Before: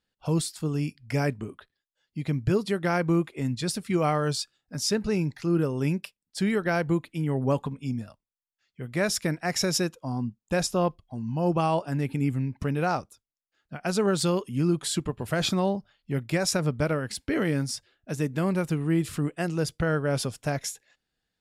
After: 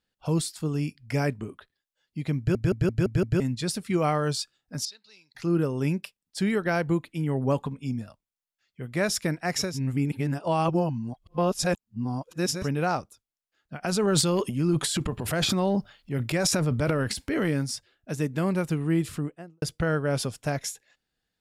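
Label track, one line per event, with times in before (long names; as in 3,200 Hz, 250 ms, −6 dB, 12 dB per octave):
2.380000	2.380000	stutter in place 0.17 s, 6 plays
4.850000	5.350000	resonant band-pass 4,100 Hz, Q 5.9
9.690000	12.570000	reverse, crossfade 0.24 s
13.820000	17.490000	transient designer attack −2 dB, sustain +11 dB
19.010000	19.620000	fade out and dull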